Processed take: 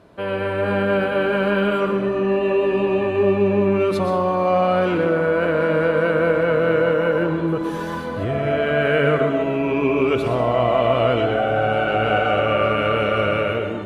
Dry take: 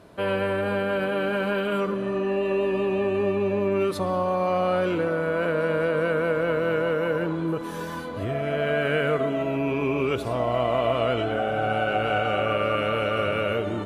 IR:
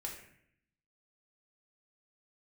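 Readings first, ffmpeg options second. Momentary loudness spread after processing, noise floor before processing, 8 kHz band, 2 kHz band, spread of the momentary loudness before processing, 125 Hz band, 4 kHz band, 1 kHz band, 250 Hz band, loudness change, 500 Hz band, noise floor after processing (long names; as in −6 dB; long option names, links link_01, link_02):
4 LU, −32 dBFS, can't be measured, +5.0 dB, 3 LU, +5.5 dB, +4.0 dB, +5.5 dB, +5.5 dB, +5.5 dB, +5.5 dB, −26 dBFS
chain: -filter_complex "[0:a]highshelf=frequency=6300:gain=-9,dynaudnorm=framelen=150:gausssize=7:maxgain=5dB,asplit=2[link_01][link_02];[1:a]atrim=start_sample=2205,adelay=121[link_03];[link_02][link_03]afir=irnorm=-1:irlink=0,volume=-5.5dB[link_04];[link_01][link_04]amix=inputs=2:normalize=0"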